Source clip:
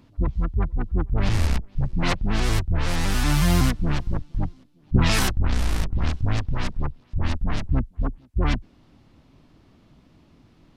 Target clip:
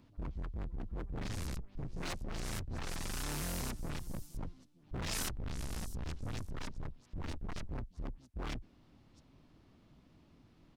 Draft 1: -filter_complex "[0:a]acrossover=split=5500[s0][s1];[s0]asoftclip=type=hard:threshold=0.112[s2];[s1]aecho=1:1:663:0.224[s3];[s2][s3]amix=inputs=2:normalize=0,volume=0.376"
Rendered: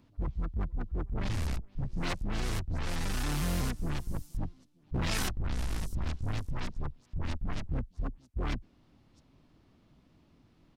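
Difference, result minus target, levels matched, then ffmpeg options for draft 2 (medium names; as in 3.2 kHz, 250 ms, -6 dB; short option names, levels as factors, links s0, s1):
hard clipper: distortion -6 dB
-filter_complex "[0:a]acrossover=split=5500[s0][s1];[s0]asoftclip=type=hard:threshold=0.0355[s2];[s1]aecho=1:1:663:0.224[s3];[s2][s3]amix=inputs=2:normalize=0,volume=0.376"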